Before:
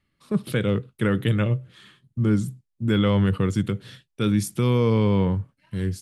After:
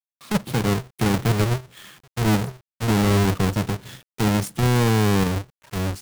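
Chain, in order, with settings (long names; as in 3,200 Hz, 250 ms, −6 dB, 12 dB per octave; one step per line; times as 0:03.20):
each half-wave held at its own peak
log-companded quantiser 4 bits
one half of a high-frequency compander encoder only
level −3.5 dB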